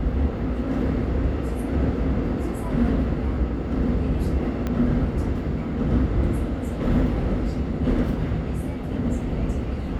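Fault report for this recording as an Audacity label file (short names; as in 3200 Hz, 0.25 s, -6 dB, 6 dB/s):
4.670000	4.670000	pop -14 dBFS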